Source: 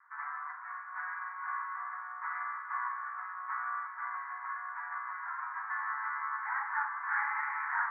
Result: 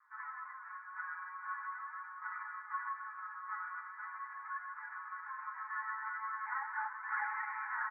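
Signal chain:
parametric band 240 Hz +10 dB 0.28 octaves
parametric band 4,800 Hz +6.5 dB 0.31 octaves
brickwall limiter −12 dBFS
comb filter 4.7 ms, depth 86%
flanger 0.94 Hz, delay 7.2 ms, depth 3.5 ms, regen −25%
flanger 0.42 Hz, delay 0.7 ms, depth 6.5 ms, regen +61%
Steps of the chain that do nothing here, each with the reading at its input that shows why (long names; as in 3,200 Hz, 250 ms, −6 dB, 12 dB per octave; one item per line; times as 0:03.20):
parametric band 240 Hz: nothing at its input below 720 Hz
parametric band 4,800 Hz: nothing at its input above 2,300 Hz
brickwall limiter −12 dBFS: peak of its input −19.0 dBFS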